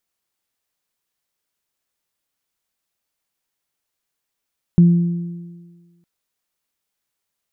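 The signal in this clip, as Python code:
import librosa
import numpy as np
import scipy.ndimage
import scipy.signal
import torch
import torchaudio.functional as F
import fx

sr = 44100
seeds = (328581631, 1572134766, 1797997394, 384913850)

y = fx.additive(sr, length_s=1.26, hz=172.0, level_db=-5.5, upper_db=(-19.0,), decay_s=1.48, upper_decays_s=(1.78,))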